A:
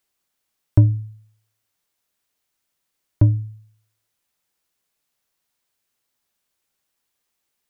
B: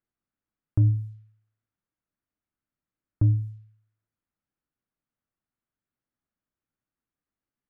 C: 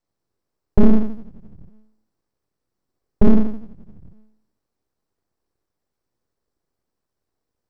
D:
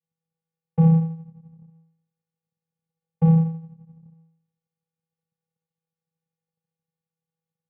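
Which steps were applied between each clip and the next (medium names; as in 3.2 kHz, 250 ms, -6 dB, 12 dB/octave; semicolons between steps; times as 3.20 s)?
level-controlled noise filter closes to 940 Hz, open at -17.5 dBFS; high-order bell 630 Hz -8.5 dB; peak limiter -12 dBFS, peak gain reduction 8.5 dB; trim -1.5 dB
reverberation RT60 0.40 s, pre-delay 59 ms, DRR 2 dB; full-wave rectifier; trim +3 dB
vocoder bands 4, square 163 Hz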